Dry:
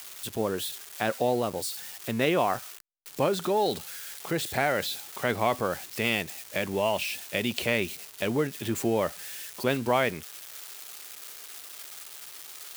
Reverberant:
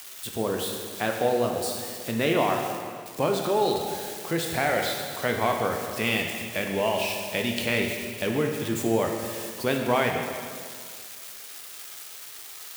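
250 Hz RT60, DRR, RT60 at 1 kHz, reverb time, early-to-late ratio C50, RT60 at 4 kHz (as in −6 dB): 2.0 s, 2.0 dB, 2.0 s, 2.0 s, 3.5 dB, 1.9 s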